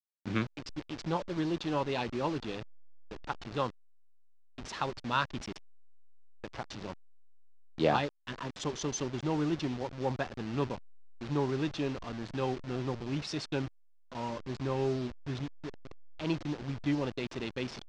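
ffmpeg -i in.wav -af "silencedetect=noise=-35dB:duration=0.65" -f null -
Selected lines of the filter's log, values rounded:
silence_start: 3.68
silence_end: 4.58 | silence_duration: 0.90
silence_start: 5.52
silence_end: 6.44 | silence_duration: 0.92
silence_start: 6.92
silence_end: 7.78 | silence_duration: 0.86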